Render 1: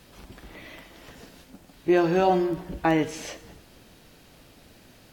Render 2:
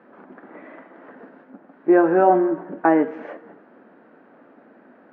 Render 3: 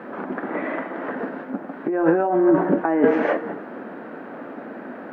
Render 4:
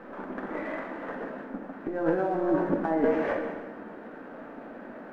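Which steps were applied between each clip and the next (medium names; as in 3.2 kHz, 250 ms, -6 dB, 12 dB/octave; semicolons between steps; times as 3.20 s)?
Chebyshev band-pass 230–1600 Hz, order 3; trim +6.5 dB
compressor with a negative ratio -25 dBFS, ratio -1; trim +7.5 dB
partial rectifier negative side -3 dB; gated-style reverb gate 430 ms falling, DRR 3.5 dB; trim -7.5 dB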